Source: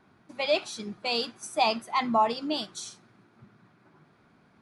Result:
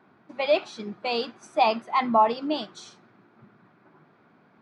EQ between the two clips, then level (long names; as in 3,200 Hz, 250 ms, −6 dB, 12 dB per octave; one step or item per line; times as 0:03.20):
high-pass filter 110 Hz
head-to-tape spacing loss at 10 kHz 24 dB
low-shelf EQ 200 Hz −8.5 dB
+6.5 dB